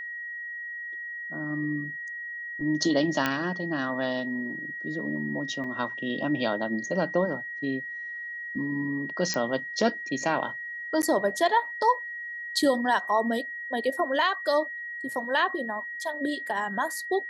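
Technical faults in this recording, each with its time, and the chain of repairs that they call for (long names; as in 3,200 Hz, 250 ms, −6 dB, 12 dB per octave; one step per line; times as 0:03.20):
whistle 1,900 Hz −34 dBFS
0:03.26: click −10 dBFS
0:05.64: drop-out 3.6 ms
0:09.34: click −14 dBFS
0:11.02–0:11.03: drop-out 9.6 ms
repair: click removal
notch filter 1,900 Hz, Q 30
repair the gap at 0:05.64, 3.6 ms
repair the gap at 0:11.02, 9.6 ms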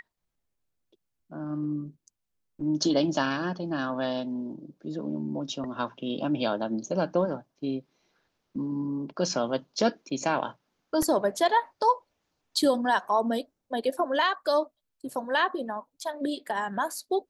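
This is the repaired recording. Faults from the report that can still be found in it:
none of them is left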